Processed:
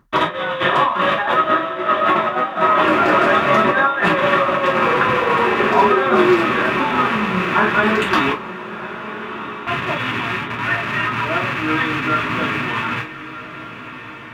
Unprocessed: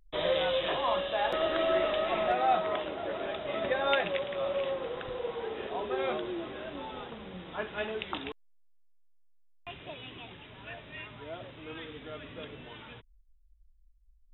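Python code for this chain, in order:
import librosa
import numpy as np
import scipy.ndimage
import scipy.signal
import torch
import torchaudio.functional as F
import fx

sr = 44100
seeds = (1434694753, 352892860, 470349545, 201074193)

y = fx.rattle_buzz(x, sr, strikes_db=-53.0, level_db=-28.0)
y = scipy.signal.sosfilt(scipy.signal.butter(2, 91.0, 'highpass', fs=sr, output='sos'), y)
y = fx.over_compress(y, sr, threshold_db=-33.0, ratio=-0.5)
y = fx.graphic_eq_10(y, sr, hz=(125, 250, 1000), db=(11, 10, 9))
y = fx.echo_diffused(y, sr, ms=1307, feedback_pct=49, wet_db=-13.5)
y = 10.0 ** (-17.0 / 20.0) * (np.abs((y / 10.0 ** (-17.0 / 20.0) + 3.0) % 4.0 - 2.0) - 1.0)
y = fx.band_shelf(y, sr, hz=1400.0, db=9.5, octaves=1.0)
y = fx.rev_gated(y, sr, seeds[0], gate_ms=80, shape='falling', drr_db=-6.0)
y = F.gain(torch.from_numpy(y), 4.0).numpy()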